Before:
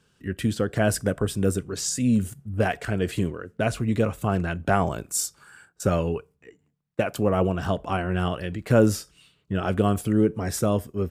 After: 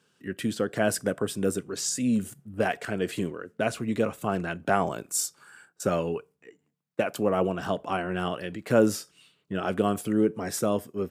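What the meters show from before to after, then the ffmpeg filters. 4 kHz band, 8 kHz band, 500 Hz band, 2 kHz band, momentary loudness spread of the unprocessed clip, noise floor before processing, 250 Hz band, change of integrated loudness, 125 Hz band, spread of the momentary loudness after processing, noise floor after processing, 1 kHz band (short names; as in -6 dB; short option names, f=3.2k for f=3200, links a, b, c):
-1.5 dB, -1.5 dB, -1.5 dB, -1.5 dB, 7 LU, -68 dBFS, -3.5 dB, -3.0 dB, -9.5 dB, 8 LU, -74 dBFS, -1.5 dB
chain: -af "highpass=190,volume=-1.5dB"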